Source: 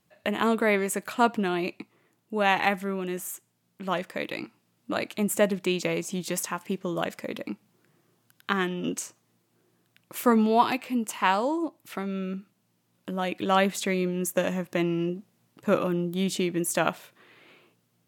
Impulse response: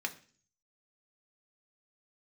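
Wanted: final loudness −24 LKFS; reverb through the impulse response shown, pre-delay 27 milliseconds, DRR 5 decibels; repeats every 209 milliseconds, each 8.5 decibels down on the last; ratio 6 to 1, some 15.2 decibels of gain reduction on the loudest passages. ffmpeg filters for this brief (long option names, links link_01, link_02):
-filter_complex "[0:a]acompressor=threshold=-33dB:ratio=6,aecho=1:1:209|418|627|836:0.376|0.143|0.0543|0.0206,asplit=2[link_01][link_02];[1:a]atrim=start_sample=2205,adelay=27[link_03];[link_02][link_03]afir=irnorm=-1:irlink=0,volume=-8dB[link_04];[link_01][link_04]amix=inputs=2:normalize=0,volume=12.5dB"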